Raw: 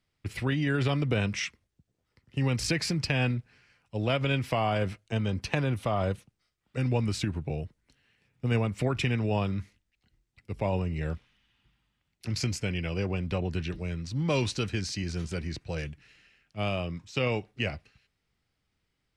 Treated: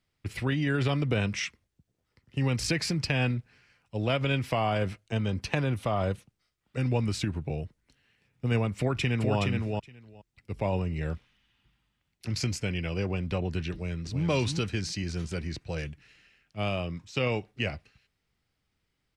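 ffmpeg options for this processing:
-filter_complex "[0:a]asplit=2[a][b];[b]afade=t=in:st=8.78:d=0.01,afade=t=out:st=9.37:d=0.01,aecho=0:1:420|840:0.668344|0.0668344[c];[a][c]amix=inputs=2:normalize=0,asplit=2[d][e];[e]afade=t=in:st=13.72:d=0.01,afade=t=out:st=14.26:d=0.01,aecho=0:1:330|660|990:0.530884|0.0796327|0.0119449[f];[d][f]amix=inputs=2:normalize=0"

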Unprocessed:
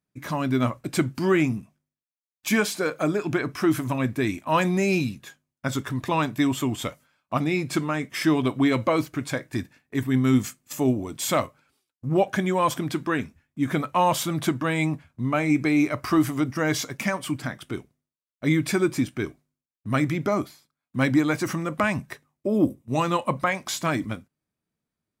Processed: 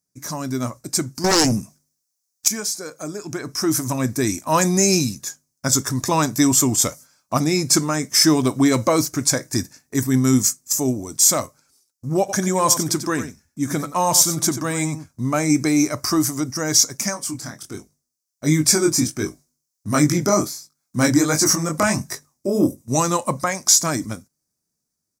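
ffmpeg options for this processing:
-filter_complex "[0:a]asettb=1/sr,asplit=3[a][b][c];[a]atrim=end=1.244[d];[b]atrim=start=1.24:end=2.48,asetpts=PTS-STARTPTS,afade=t=in:d=0.004:c=qsin,afade=t=out:st=1.236:d=0.004:c=qsin,aeval=exprs='0.316*sin(PI/2*3.55*val(0)/0.316)':c=same[e];[c]atrim=start=2.476[f];[d][e]acrossfade=d=0.004:c1=hsin:c2=qsin[g];[g][f]acrossfade=d=0.004:c1=qsin:c2=hsin,asplit=3[h][i][j];[h]afade=t=out:st=12.28:d=0.02[k];[i]aecho=1:1:91:0.282,afade=t=in:st=12.28:d=0.02,afade=t=out:st=15.07:d=0.02[l];[j]afade=t=in:st=15.07:d=0.02[m];[k][l][m]amix=inputs=3:normalize=0,asplit=3[n][o][p];[n]afade=t=out:st=17.13:d=0.02[q];[o]flanger=delay=19.5:depth=6.3:speed=1.4,afade=t=in:st=17.13:d=0.02,afade=t=out:st=22.77:d=0.02[r];[p]afade=t=in:st=22.77:d=0.02[s];[q][r][s]amix=inputs=3:normalize=0,highshelf=f=4.2k:t=q:w=3:g=11.5,dynaudnorm=f=160:g=13:m=11.5dB,volume=-1dB"

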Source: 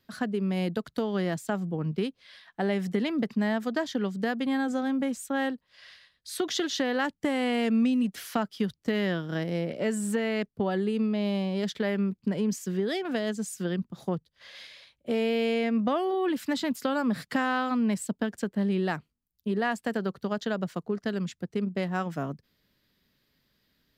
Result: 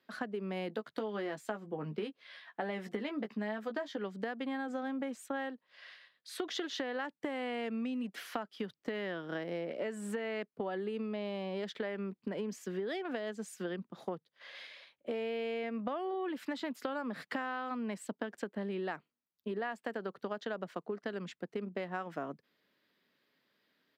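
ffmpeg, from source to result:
-filter_complex "[0:a]asplit=3[a][b][c];[a]afade=t=out:st=0.69:d=0.02[d];[b]asplit=2[e][f];[f]adelay=14,volume=-5.5dB[g];[e][g]amix=inputs=2:normalize=0,afade=t=in:st=0.69:d=0.02,afade=t=out:st=3.97:d=0.02[h];[c]afade=t=in:st=3.97:d=0.02[i];[d][h][i]amix=inputs=3:normalize=0,highpass=190,bass=f=250:g=-9,treble=f=4k:g=-12,acompressor=threshold=-34dB:ratio=6"

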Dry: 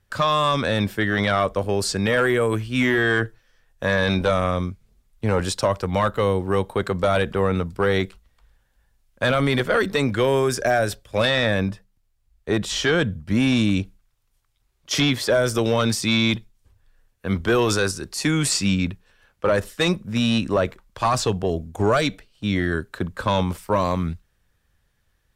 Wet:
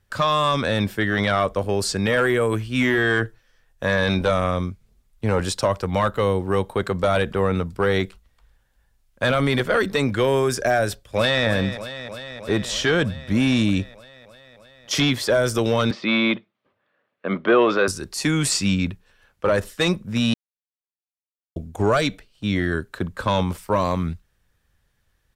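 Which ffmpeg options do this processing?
-filter_complex "[0:a]asplit=2[a][b];[b]afade=t=in:st=10.87:d=0.01,afade=t=out:st=11.46:d=0.01,aecho=0:1:310|620|930|1240|1550|1860|2170|2480|2790|3100|3410|3720:0.266073|0.212858|0.170286|0.136229|0.108983|0.0871866|0.0697493|0.0557994|0.0446396|0.0357116|0.0285693|0.0228555[c];[a][c]amix=inputs=2:normalize=0,asettb=1/sr,asplit=3[d][e][f];[d]atrim=end=15.914[g];[e]atrim=start=15.91:end=17.88,asetpts=PTS-STARTPTS,afade=t=in:d=0.004:c=qsin,afade=t=out:st=1.966:d=0.004:c=qsin,highpass=f=180:w=0.5412,highpass=f=180:w=1.3066,equalizer=f=350:t=q:w=4:g=3,equalizer=f=590:t=q:w=4:g=9,equalizer=f=1.2k:t=q:w=4:g=7,equalizer=f=2.1k:t=q:w=4:g=3,lowpass=f=3.4k:w=0.5412,lowpass=f=3.4k:w=1.3066[h];[f]atrim=start=17.876[i];[g][h]acrossfade=d=0.004:c1=hsin:c2=qsin[j];[j][i]acrossfade=d=0.004:c1=qsin:c2=hsin,asplit=3[k][l][m];[k]atrim=end=20.34,asetpts=PTS-STARTPTS,afade=t=out:st=20.336:d=0.004:c=hsin[n];[l]atrim=start=20.34:end=21.56,asetpts=PTS-STARTPTS,volume=0[o];[m]atrim=start=21.56,asetpts=PTS-STARTPTS,afade=t=in:d=0.004:c=hsin[p];[n][o][p]concat=n=3:v=0:a=1"

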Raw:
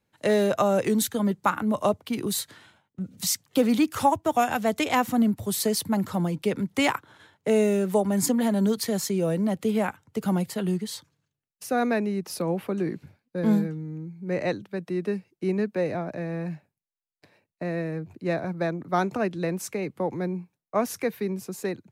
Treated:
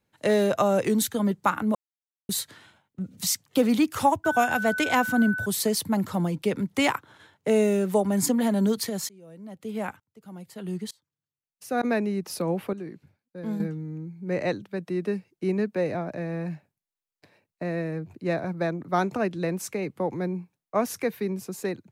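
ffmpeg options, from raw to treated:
-filter_complex "[0:a]asettb=1/sr,asplit=3[a][b][c];[a]atrim=end=4.244[d];[b]atrim=start=4.24:end=5.46,asetpts=PTS-STARTPTS,afade=t=in:d=0.004:c=qsin,afade=t=out:st=1.216:d=0.004:c=qsin,aeval=exprs='val(0)+0.0398*sin(2*PI*1500*n/s)':c=same[e];[c]atrim=start=5.456[f];[d][e]acrossfade=d=0.004:c1=hsin:c2=qsin[g];[g][f]acrossfade=d=0.004:c1=qsin:c2=hsin,asplit=3[h][i][j];[h]afade=t=out:st=8.88:d=0.02[k];[i]aeval=exprs='val(0)*pow(10,-28*if(lt(mod(-1.1*n/s,1),2*abs(-1.1)/1000),1-mod(-1.1*n/s,1)/(2*abs(-1.1)/1000),(mod(-1.1*n/s,1)-2*abs(-1.1)/1000)/(1-2*abs(-1.1)/1000))/20)':c=same,afade=t=in:st=8.88:d=0.02,afade=t=out:st=11.83:d=0.02[l];[j]afade=t=in:st=11.83:d=0.02[m];[k][l][m]amix=inputs=3:normalize=0,asplit=5[n][o][p][q][r];[n]atrim=end=1.75,asetpts=PTS-STARTPTS,afade=t=out:st=1.746:d=0.004:c=hsin[s];[o]atrim=start=1.75:end=2.29,asetpts=PTS-STARTPTS,volume=0[t];[p]atrim=start=2.29:end=12.732,asetpts=PTS-STARTPTS,afade=t=in:d=0.004:c=hsin[u];[q]atrim=start=12.728:end=13.602,asetpts=PTS-STARTPTS,volume=-9.5dB[v];[r]atrim=start=13.598[w];[s][t][u]concat=n=3:v=0:a=1[x];[x][v]acrossfade=d=0.004:c1=hsin:c2=hsin[y];[y][w]acrossfade=d=0.004:c1=hsin:c2=hsin"

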